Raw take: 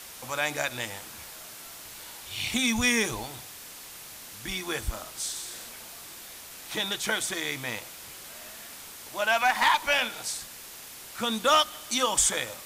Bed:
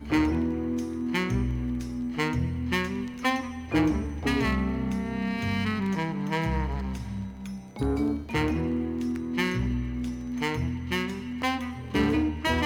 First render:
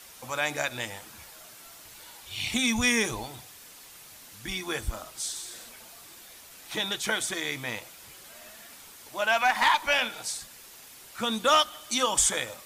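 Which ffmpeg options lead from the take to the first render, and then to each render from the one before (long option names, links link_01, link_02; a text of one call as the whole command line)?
ffmpeg -i in.wav -af "afftdn=noise_reduction=6:noise_floor=-45" out.wav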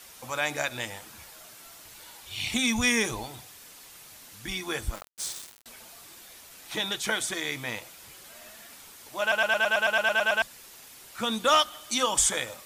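ffmpeg -i in.wav -filter_complex "[0:a]asettb=1/sr,asplit=3[link_01][link_02][link_03];[link_01]atrim=end=4.954[link_04];[link_02]atrim=start=4.95:end=5.66,asetpts=PTS-STARTPTS,afade=type=in:duration=0.004:curve=qsin,afade=type=out:start_time=0.706:duration=0.004:curve=qsin,aeval=exprs='val(0)*gte(abs(val(0)),0.0188)':channel_layout=same[link_05];[link_03]atrim=start=5.656[link_06];[link_04][link_05]acrossfade=duration=0.004:curve1=hsin:curve2=qsin[link_07];[link_07][link_06]acrossfade=duration=0.004:curve1=qsin:curve2=hsin,asplit=12[link_08][link_09][link_10][link_11][link_12][link_13][link_14][link_15][link_16][link_17][link_18][link_19];[link_08]atrim=end=9.322[link_20];[link_09]atrim=start=9.208:end=9.322[link_21];[link_10]atrim=start=9.208:end=9.322[link_22];[link_11]atrim=start=9.208:end=9.322[link_23];[link_12]atrim=start=9.208:end=9.322[link_24];[link_13]atrim=start=9.208:end=9.322[link_25];[link_14]atrim=start=9.208:end=9.322[link_26];[link_15]atrim=start=9.208:end=9.322[link_27];[link_16]atrim=start=9.208:end=9.322[link_28];[link_17]atrim=start=9.208:end=9.322[link_29];[link_18]atrim=start=9.208:end=9.322[link_30];[link_19]atrim=start=10.418[link_31];[link_20][link_21]acrossfade=duration=0.004:curve1=hsin:curve2=hsin[link_32];[link_32][link_22]acrossfade=duration=0.004:curve1=hsin:curve2=hsin[link_33];[link_33][link_23]acrossfade=duration=0.004:curve1=hsin:curve2=hsin[link_34];[link_34][link_24]acrossfade=duration=0.004:curve1=hsin:curve2=hsin[link_35];[link_35][link_25]acrossfade=duration=0.004:curve1=hsin:curve2=hsin[link_36];[link_36][link_26]acrossfade=duration=0.004:curve1=hsin:curve2=hsin[link_37];[link_37][link_27]acrossfade=duration=0.004:curve1=hsin:curve2=hsin[link_38];[link_38][link_28]acrossfade=duration=0.004:curve1=hsin:curve2=hsin[link_39];[link_39][link_29]acrossfade=duration=0.004:curve1=hsin:curve2=hsin[link_40];[link_40][link_30]acrossfade=duration=0.004:curve1=hsin:curve2=hsin[link_41];[link_41][link_31]acrossfade=duration=0.004:curve1=hsin:curve2=hsin" out.wav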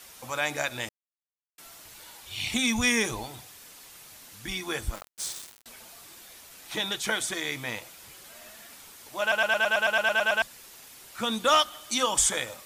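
ffmpeg -i in.wav -filter_complex "[0:a]asplit=3[link_01][link_02][link_03];[link_01]atrim=end=0.89,asetpts=PTS-STARTPTS,afade=type=out:start_time=0.886:duration=0.004:curve=hsin[link_04];[link_02]atrim=start=0.89:end=1.58,asetpts=PTS-STARTPTS,volume=0[link_05];[link_03]atrim=start=1.58,asetpts=PTS-STARTPTS,afade=type=in:duration=0.004:curve=hsin[link_06];[link_04][link_05][link_06]concat=n=3:v=0:a=1" out.wav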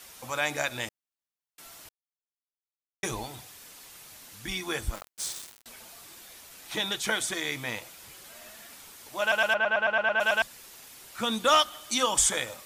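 ffmpeg -i in.wav -filter_complex "[0:a]asplit=3[link_01][link_02][link_03];[link_01]afade=type=out:start_time=9.53:duration=0.02[link_04];[link_02]lowpass=2200,afade=type=in:start_time=9.53:duration=0.02,afade=type=out:start_time=10.19:duration=0.02[link_05];[link_03]afade=type=in:start_time=10.19:duration=0.02[link_06];[link_04][link_05][link_06]amix=inputs=3:normalize=0,asplit=3[link_07][link_08][link_09];[link_07]atrim=end=1.89,asetpts=PTS-STARTPTS,afade=type=out:start_time=1.886:duration=0.004:curve=hsin[link_10];[link_08]atrim=start=1.89:end=3.03,asetpts=PTS-STARTPTS,volume=0[link_11];[link_09]atrim=start=3.03,asetpts=PTS-STARTPTS,afade=type=in:duration=0.004:curve=hsin[link_12];[link_10][link_11][link_12]concat=n=3:v=0:a=1" out.wav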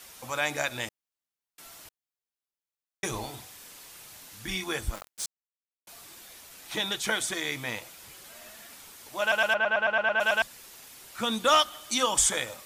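ffmpeg -i in.wav -filter_complex "[0:a]asettb=1/sr,asplit=3[link_01][link_02][link_03];[link_01]atrim=end=3.104[link_04];[link_02]atrim=start=3.1:end=4.64,asetpts=PTS-STARTPTS,afade=type=in:duration=0.004:curve=qsin,afade=type=out:start_time=1.536:duration=0.004:curve=qsin,asplit=2[link_05][link_06];[link_06]adelay=37,volume=-7dB[link_07];[link_05][link_07]amix=inputs=2:normalize=0,atrim=end_sample=67914[link_08];[link_03]atrim=start=4.636[link_09];[link_04][link_08]acrossfade=duration=0.004:curve1=hsin:curve2=qsin[link_10];[link_10][link_09]acrossfade=duration=0.004:curve1=qsin:curve2=hsin,asplit=3[link_11][link_12][link_13];[link_11]atrim=end=5.26,asetpts=PTS-STARTPTS,afade=type=out:start_time=5.256:duration=0.004:curve=hsin[link_14];[link_12]atrim=start=5.26:end=5.87,asetpts=PTS-STARTPTS,volume=0[link_15];[link_13]atrim=start=5.87,asetpts=PTS-STARTPTS,afade=type=in:duration=0.004:curve=hsin[link_16];[link_14][link_15][link_16]concat=n=3:v=0:a=1" out.wav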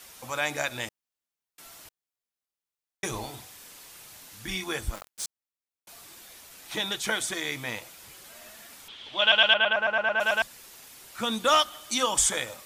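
ffmpeg -i in.wav -filter_complex "[0:a]asettb=1/sr,asplit=3[link_01][link_02][link_03];[link_01]atrim=end=8.884[link_04];[link_02]atrim=start=8.88:end=9.73,asetpts=PTS-STARTPTS,afade=type=in:duration=0.004:curve=qsin,afade=type=out:start_time=0.846:duration=0.004:curve=qsin,lowpass=frequency=3300:width_type=q:width=7.7[link_05];[link_03]atrim=start=9.726[link_06];[link_04][link_05]acrossfade=duration=0.004:curve1=hsin:curve2=qsin[link_07];[link_07][link_06]acrossfade=duration=0.004:curve1=qsin:curve2=hsin" out.wav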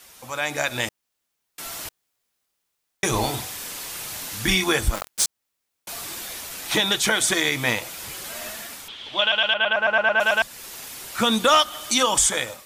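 ffmpeg -i in.wav -af "dynaudnorm=framelen=470:gausssize=3:maxgain=15.5dB,alimiter=limit=-9dB:level=0:latency=1:release=233" out.wav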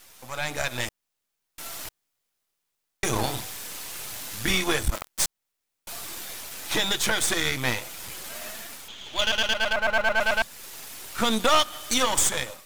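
ffmpeg -i in.wav -af "aeval=exprs='if(lt(val(0),0),0.251*val(0),val(0))':channel_layout=same,acrusher=bits=9:mode=log:mix=0:aa=0.000001" out.wav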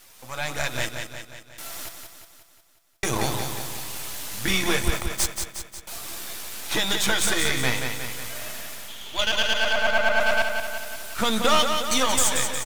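ffmpeg -i in.wav -filter_complex "[0:a]asplit=2[link_01][link_02];[link_02]adelay=15,volume=-12dB[link_03];[link_01][link_03]amix=inputs=2:normalize=0,aecho=1:1:180|360|540|720|900|1080|1260:0.501|0.281|0.157|0.088|0.0493|0.0276|0.0155" out.wav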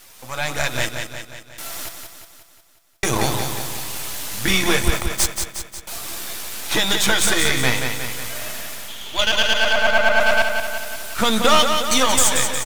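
ffmpeg -i in.wav -af "volume=5dB" out.wav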